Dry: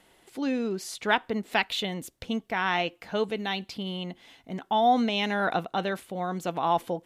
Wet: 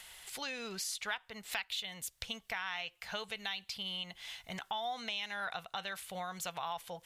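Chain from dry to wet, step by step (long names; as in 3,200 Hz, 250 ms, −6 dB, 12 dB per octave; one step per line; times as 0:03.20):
guitar amp tone stack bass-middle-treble 10-0-10
downward compressor 4 to 1, threshold −49 dBFS, peak gain reduction 20 dB
one half of a high-frequency compander encoder only
level +10.5 dB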